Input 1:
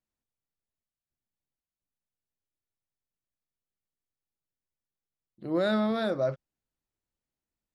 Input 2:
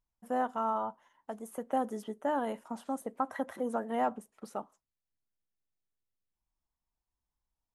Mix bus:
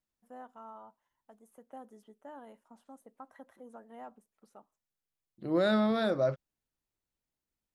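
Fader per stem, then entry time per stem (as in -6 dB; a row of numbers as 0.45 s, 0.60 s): -0.5 dB, -17.0 dB; 0.00 s, 0.00 s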